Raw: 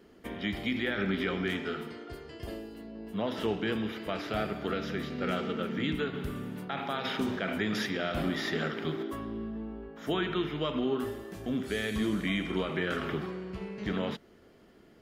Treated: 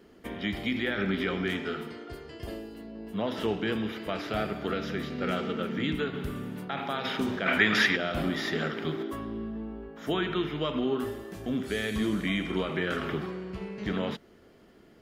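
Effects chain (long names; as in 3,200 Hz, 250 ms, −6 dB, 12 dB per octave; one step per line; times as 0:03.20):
0:07.46–0:07.96: parametric band 1,900 Hz +12 dB 2.5 octaves
level +1.5 dB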